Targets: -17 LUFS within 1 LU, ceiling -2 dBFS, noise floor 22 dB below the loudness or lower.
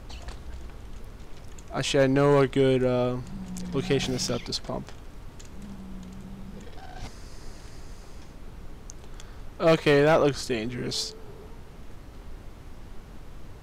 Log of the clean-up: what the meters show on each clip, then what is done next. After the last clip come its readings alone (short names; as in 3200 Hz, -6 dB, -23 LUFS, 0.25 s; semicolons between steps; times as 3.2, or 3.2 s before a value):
clipped 0.3%; flat tops at -14.0 dBFS; noise floor -45 dBFS; noise floor target -47 dBFS; loudness -25.0 LUFS; peak -14.0 dBFS; loudness target -17.0 LUFS
-> clip repair -14 dBFS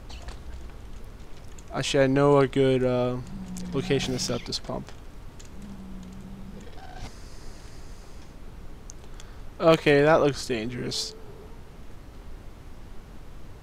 clipped 0.0%; noise floor -45 dBFS; noise floor target -47 dBFS
-> noise print and reduce 6 dB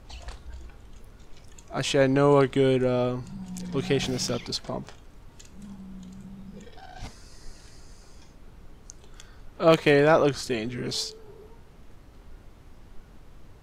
noise floor -51 dBFS; loudness -24.0 LUFS; peak -5.5 dBFS; loudness target -17.0 LUFS
-> gain +7 dB; limiter -2 dBFS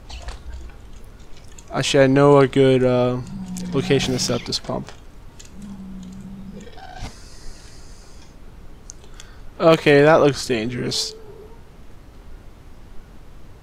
loudness -17.5 LUFS; peak -2.0 dBFS; noise floor -44 dBFS